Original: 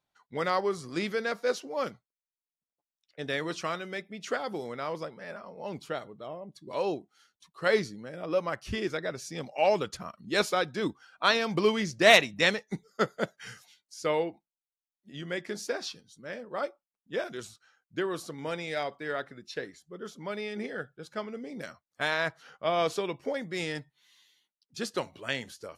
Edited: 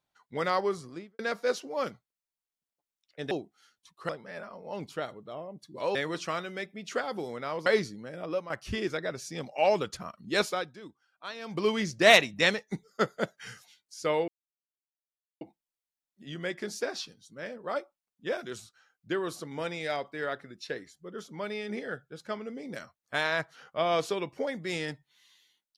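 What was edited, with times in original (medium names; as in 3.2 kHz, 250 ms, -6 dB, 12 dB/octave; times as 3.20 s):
0.67–1.19 s: studio fade out
3.31–5.02 s: swap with 6.88–7.66 s
8.23–8.50 s: fade out, to -12 dB
10.37–11.79 s: dip -16.5 dB, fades 0.43 s
14.28 s: insert silence 1.13 s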